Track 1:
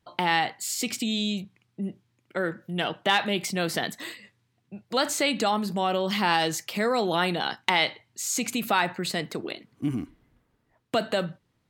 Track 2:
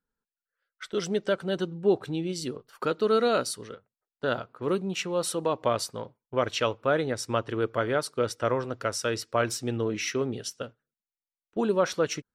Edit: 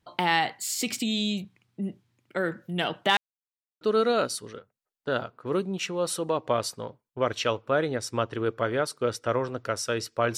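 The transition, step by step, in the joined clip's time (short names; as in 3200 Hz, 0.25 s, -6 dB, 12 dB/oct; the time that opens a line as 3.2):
track 1
3.17–3.81 mute
3.81 switch to track 2 from 2.97 s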